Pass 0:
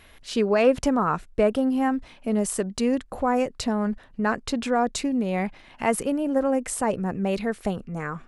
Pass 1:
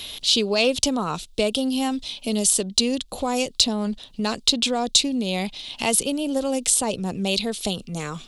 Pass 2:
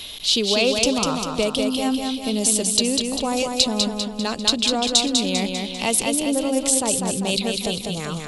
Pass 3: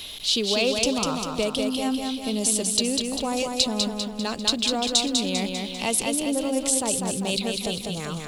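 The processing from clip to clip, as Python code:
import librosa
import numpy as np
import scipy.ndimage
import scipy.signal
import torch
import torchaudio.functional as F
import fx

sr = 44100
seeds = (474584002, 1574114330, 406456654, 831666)

y1 = fx.high_shelf_res(x, sr, hz=2500.0, db=13.0, q=3.0)
y1 = fx.band_squash(y1, sr, depth_pct=40)
y1 = y1 * librosa.db_to_amplitude(-1.0)
y2 = fx.echo_feedback(y1, sr, ms=198, feedback_pct=51, wet_db=-4.0)
y3 = fx.law_mismatch(y2, sr, coded='mu')
y3 = y3 * librosa.db_to_amplitude(-4.0)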